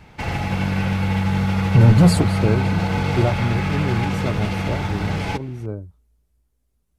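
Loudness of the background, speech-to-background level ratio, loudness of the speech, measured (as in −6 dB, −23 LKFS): −22.5 LKFS, 1.0 dB, −21.5 LKFS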